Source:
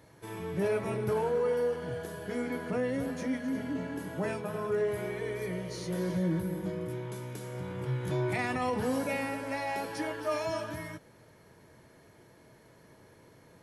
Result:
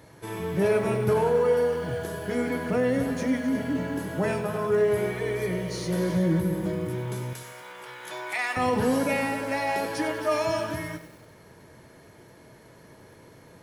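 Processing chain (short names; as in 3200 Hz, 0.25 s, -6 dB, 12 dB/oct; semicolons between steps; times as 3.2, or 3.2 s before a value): 7.33–8.57 HPF 920 Hz 12 dB/oct; lo-fi delay 96 ms, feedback 55%, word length 9-bit, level -11.5 dB; gain +6.5 dB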